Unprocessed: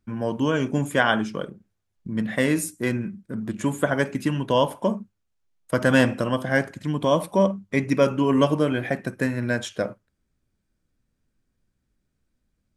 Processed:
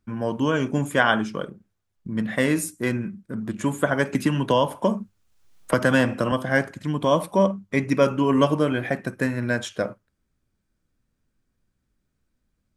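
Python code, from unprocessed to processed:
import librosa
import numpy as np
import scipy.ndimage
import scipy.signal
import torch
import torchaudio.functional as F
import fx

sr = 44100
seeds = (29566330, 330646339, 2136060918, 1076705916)

y = fx.peak_eq(x, sr, hz=1200.0, db=2.5, octaves=0.77)
y = fx.band_squash(y, sr, depth_pct=70, at=(4.13, 6.32))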